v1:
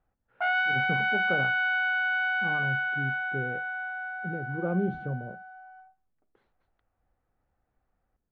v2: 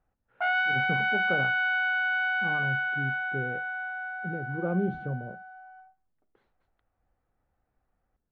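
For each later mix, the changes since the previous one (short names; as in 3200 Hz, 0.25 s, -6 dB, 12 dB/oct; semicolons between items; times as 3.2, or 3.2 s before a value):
none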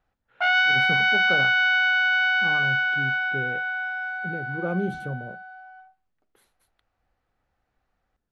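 master: remove tape spacing loss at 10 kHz 39 dB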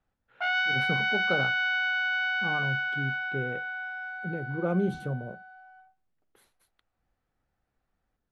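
background -7.0 dB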